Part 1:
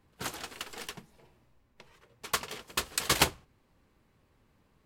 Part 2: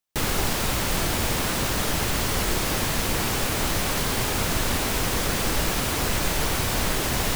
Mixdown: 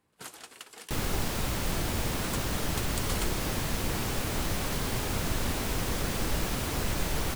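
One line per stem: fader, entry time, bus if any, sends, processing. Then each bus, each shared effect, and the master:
−4.0 dB, 0.00 s, no send, high-pass filter 190 Hz 6 dB per octave; parametric band 9,400 Hz +7 dB; downward compressor 2 to 1, threshold −39 dBFS, peak gain reduction 12 dB
−8.5 dB, 0.75 s, no send, low-shelf EQ 420 Hz +5 dB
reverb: not used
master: no processing

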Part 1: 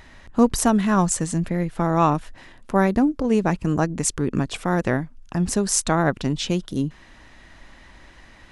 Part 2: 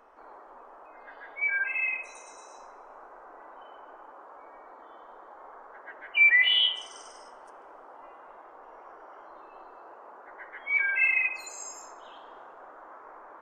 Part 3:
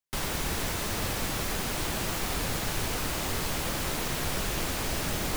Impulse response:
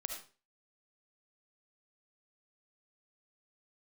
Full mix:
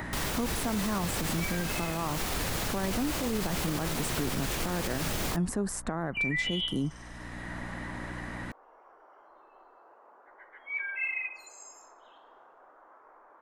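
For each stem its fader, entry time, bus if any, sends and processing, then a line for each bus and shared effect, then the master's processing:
−6.5 dB, 0.00 s, no send, flat-topped bell 4,000 Hz −8 dB; mains hum 60 Hz, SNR 24 dB; multiband upward and downward compressor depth 70%
−8.5 dB, 0.00 s, no send, no processing
+0.5 dB, 0.00 s, no send, no processing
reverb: not used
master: brickwall limiter −21.5 dBFS, peak gain reduction 10 dB

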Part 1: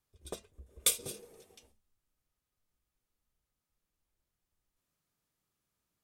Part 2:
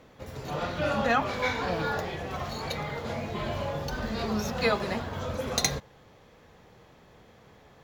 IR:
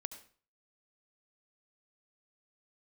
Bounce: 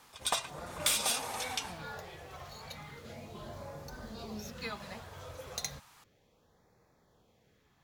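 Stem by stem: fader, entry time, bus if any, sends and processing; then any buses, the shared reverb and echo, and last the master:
+1.0 dB, 0.00 s, send −8.5 dB, low shelf with overshoot 580 Hz −13 dB, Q 3; mid-hump overdrive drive 31 dB, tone 6,300 Hz, clips at −12.5 dBFS
−13.0 dB, 0.00 s, no send, high-shelf EQ 6,400 Hz +10.5 dB; auto-filter notch sine 0.33 Hz 220–3,100 Hz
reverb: on, RT60 0.45 s, pre-delay 65 ms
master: high-shelf EQ 11,000 Hz −4.5 dB; downward compressor 2 to 1, threshold −33 dBFS, peak gain reduction 8.5 dB

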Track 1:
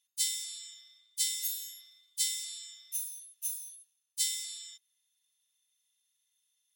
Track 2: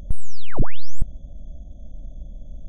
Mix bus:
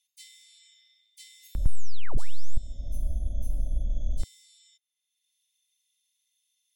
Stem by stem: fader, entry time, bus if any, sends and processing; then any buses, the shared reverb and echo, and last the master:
−16.0 dB, 0.00 s, no send, Chebyshev high-pass filter 2,100 Hz, order 4; high-shelf EQ 8,300 Hz −5.5 dB
−3.5 dB, 1.55 s, no send, parametric band 160 Hz −7 dB 0.51 octaves; speech leveller within 4 dB 0.5 s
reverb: not used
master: multiband upward and downward compressor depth 70%

